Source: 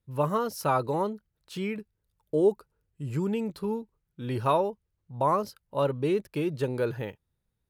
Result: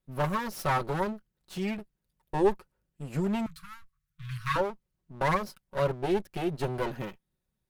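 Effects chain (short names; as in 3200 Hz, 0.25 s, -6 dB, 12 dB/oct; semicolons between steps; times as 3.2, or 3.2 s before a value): minimum comb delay 5.4 ms; 3.46–4.56 Chebyshev band-stop 160–1100 Hz, order 5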